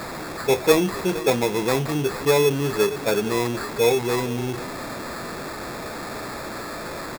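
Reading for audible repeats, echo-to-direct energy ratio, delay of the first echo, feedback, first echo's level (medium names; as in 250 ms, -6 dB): 1, -16.0 dB, 468 ms, no regular repeats, -16.0 dB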